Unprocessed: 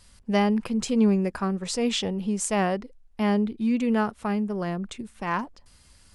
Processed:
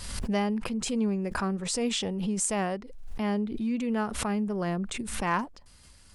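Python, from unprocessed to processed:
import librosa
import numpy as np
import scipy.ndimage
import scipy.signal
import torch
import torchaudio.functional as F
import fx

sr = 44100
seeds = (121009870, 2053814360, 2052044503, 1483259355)

y = fx.rider(x, sr, range_db=5, speed_s=0.5)
y = fx.dynamic_eq(y, sr, hz=8700.0, q=1.6, threshold_db=-51.0, ratio=4.0, max_db=6)
y = fx.pre_swell(y, sr, db_per_s=43.0)
y = F.gain(torch.from_numpy(y), -4.5).numpy()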